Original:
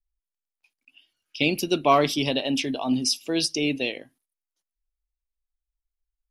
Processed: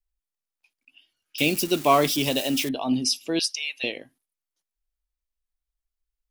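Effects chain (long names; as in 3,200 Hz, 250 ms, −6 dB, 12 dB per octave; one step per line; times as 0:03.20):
0:01.38–0:02.69: spike at every zero crossing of −23 dBFS
0:03.39–0:03.84: high-pass filter 1,100 Hz 24 dB per octave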